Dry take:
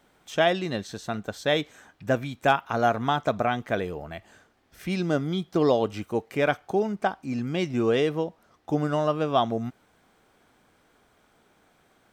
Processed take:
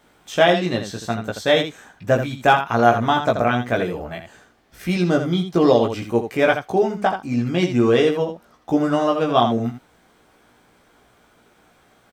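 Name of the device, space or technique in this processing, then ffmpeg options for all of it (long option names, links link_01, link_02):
slapback doubling: -filter_complex "[0:a]asplit=3[link_01][link_02][link_03];[link_02]adelay=17,volume=-3dB[link_04];[link_03]adelay=82,volume=-7.5dB[link_05];[link_01][link_04][link_05]amix=inputs=3:normalize=0,volume=4.5dB"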